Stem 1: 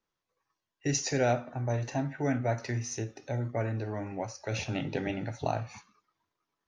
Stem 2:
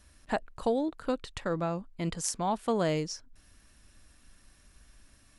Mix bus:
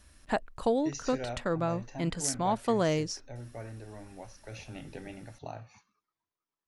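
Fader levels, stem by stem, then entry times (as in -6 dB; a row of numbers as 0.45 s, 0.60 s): -11.0 dB, +1.0 dB; 0.00 s, 0.00 s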